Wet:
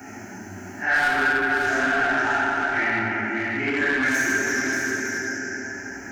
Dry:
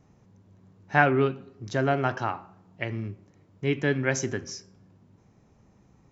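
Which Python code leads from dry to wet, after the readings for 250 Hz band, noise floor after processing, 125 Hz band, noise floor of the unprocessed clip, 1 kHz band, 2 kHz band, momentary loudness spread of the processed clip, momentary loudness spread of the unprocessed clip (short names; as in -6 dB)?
+3.5 dB, -39 dBFS, -8.5 dB, -61 dBFS, +5.0 dB, +12.0 dB, 13 LU, 17 LU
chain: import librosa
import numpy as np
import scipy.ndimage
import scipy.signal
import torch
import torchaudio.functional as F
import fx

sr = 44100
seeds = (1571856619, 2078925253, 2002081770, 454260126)

p1 = fx.phase_scramble(x, sr, seeds[0], window_ms=200)
p2 = np.clip(10.0 ** (13.5 / 20.0) * p1, -1.0, 1.0) / 10.0 ** (13.5 / 20.0)
p3 = scipy.signal.sosfilt(scipy.signal.butter(2, 100.0, 'highpass', fs=sr, output='sos'), p2)
p4 = fx.high_shelf(p3, sr, hz=3300.0, db=10.5)
p5 = fx.fixed_phaser(p4, sr, hz=750.0, stages=8)
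p6 = fx.rev_plate(p5, sr, seeds[1], rt60_s=2.4, hf_ratio=0.8, predelay_ms=0, drr_db=-4.5)
p7 = 10.0 ** (-25.0 / 20.0) * np.tanh(p6 / 10.0 ** (-25.0 / 20.0))
p8 = fx.peak_eq(p7, sr, hz=1500.0, db=11.5, octaves=0.68)
p9 = p8 + fx.echo_single(p8, sr, ms=581, db=-8.0, dry=0)
p10 = fx.band_squash(p9, sr, depth_pct=70)
y = p10 * 10.0 ** (1.5 / 20.0)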